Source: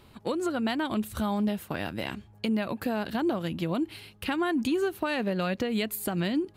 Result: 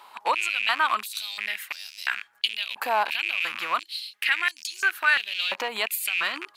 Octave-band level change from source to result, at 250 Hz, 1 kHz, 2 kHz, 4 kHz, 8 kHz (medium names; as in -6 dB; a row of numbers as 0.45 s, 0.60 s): -23.0 dB, +7.5 dB, +12.5 dB, +10.5 dB, +7.0 dB